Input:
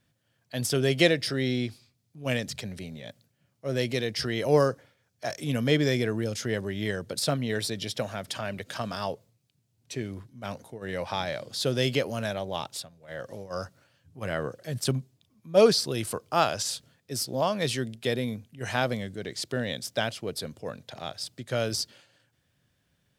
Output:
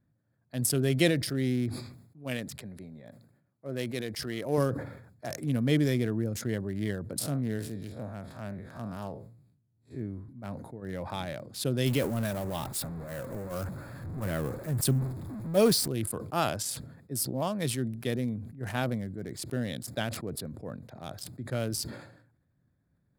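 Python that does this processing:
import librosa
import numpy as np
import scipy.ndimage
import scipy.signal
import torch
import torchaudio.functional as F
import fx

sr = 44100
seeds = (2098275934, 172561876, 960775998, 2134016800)

y = fx.low_shelf(x, sr, hz=230.0, db=-9.5, at=(1.69, 4.58))
y = fx.spec_blur(y, sr, span_ms=87.0, at=(7.19, 10.29))
y = fx.zero_step(y, sr, step_db=-31.5, at=(11.86, 15.88))
y = fx.wiener(y, sr, points=15)
y = fx.curve_eq(y, sr, hz=(310.0, 450.0, 6200.0, 10000.0), db=(0, -6, -5, 7))
y = fx.sustainer(y, sr, db_per_s=69.0)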